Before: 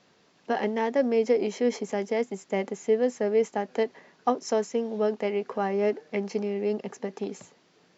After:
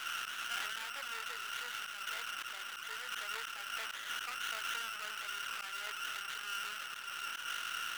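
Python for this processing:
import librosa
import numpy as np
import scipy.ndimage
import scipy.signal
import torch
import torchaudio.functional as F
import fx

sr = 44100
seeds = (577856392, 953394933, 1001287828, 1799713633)

y = fx.delta_mod(x, sr, bps=16000, step_db=-25.0)
y = fx.bandpass_q(y, sr, hz=1400.0, q=16.0)
y = fx.auto_swell(y, sr, attack_ms=152.0)
y = np.maximum(y, 0.0)
y = fx.tilt_eq(y, sr, slope=5.5)
y = fx.sustainer(y, sr, db_per_s=22.0)
y = y * 10.0 ** (6.5 / 20.0)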